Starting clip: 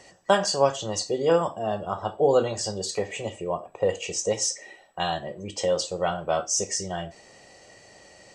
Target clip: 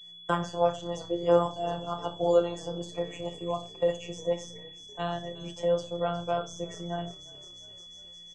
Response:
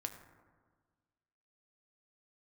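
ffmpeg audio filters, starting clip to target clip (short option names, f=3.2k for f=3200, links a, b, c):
-filter_complex "[0:a]aeval=exprs='val(0)+0.00891*(sin(2*PI*60*n/s)+sin(2*PI*2*60*n/s)/2+sin(2*PI*3*60*n/s)/3+sin(2*PI*4*60*n/s)/4+sin(2*PI*5*60*n/s)/5)':c=same,afftfilt=real='hypot(re,im)*cos(PI*b)':imag='0':win_size=1024:overlap=0.75,agate=range=-33dB:threshold=-36dB:ratio=3:detection=peak,bandreject=f=60:t=h:w=6,bandreject=f=120:t=h:w=6,bandreject=f=180:t=h:w=6,bandreject=f=240:t=h:w=6,bandreject=f=300:t=h:w=6,bandreject=f=360:t=h:w=6,bandreject=f=420:t=h:w=6,bandreject=f=480:t=h:w=6,bandreject=f=540:t=h:w=6,aresample=32000,aresample=44100,equalizer=f=125:t=o:w=0.33:g=6,equalizer=f=4k:t=o:w=0.33:g=-9,equalizer=f=6.3k:t=o:w=0.33:g=8,asplit=6[a][b][c][d][e][f];[b]adelay=354,afreqshift=-33,volume=-23.5dB[g];[c]adelay=708,afreqshift=-66,volume=-27.5dB[h];[d]adelay=1062,afreqshift=-99,volume=-31.5dB[i];[e]adelay=1416,afreqshift=-132,volume=-35.5dB[j];[f]adelay=1770,afreqshift=-165,volume=-39.6dB[k];[a][g][h][i][j][k]amix=inputs=6:normalize=0,acrossover=split=260|960|1900[l][m][n][o];[o]acompressor=threshold=-54dB:ratio=4[p];[l][m][n][p]amix=inputs=4:normalize=0,highshelf=f=9k:g=-11,aeval=exprs='val(0)+0.00282*sin(2*PI*3400*n/s)':c=same,aexciter=amount=1.6:drive=6.2:freq=3.2k"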